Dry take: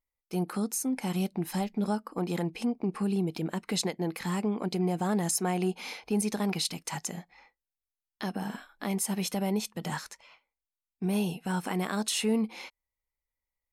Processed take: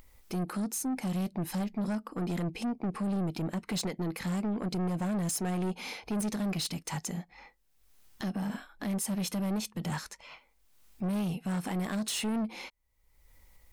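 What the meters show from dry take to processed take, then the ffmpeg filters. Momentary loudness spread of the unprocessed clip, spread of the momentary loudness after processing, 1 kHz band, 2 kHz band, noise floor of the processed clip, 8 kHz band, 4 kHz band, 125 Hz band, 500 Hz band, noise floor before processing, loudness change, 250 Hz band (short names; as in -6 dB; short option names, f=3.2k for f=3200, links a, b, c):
9 LU, 7 LU, -4.5 dB, -3.0 dB, -68 dBFS, -3.5 dB, -3.5 dB, -0.5 dB, -5.5 dB, under -85 dBFS, -2.5 dB, -1.5 dB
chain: -af "lowshelf=f=260:g=8.5,acompressor=mode=upward:threshold=-36dB:ratio=2.5,asoftclip=type=tanh:threshold=-28.5dB"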